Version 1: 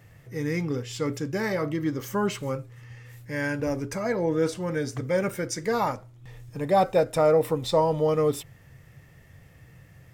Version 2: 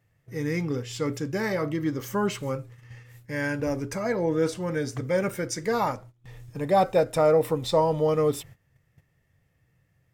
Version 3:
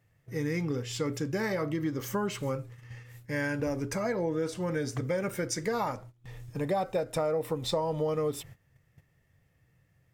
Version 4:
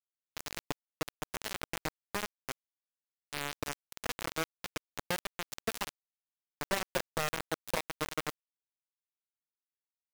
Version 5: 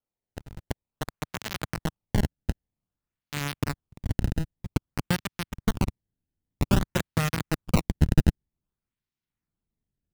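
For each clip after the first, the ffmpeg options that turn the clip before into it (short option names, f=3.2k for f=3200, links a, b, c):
-af "agate=range=-16dB:threshold=-45dB:ratio=16:detection=peak"
-af "acompressor=threshold=-27dB:ratio=5"
-af "acrusher=bits=3:mix=0:aa=0.000001,volume=-4.5dB"
-af "highpass=110,lowpass=6.2k,acrusher=samples=22:mix=1:aa=0.000001:lfo=1:lforange=35.2:lforate=0.52,asubboost=boost=8:cutoff=190,volume=5.5dB"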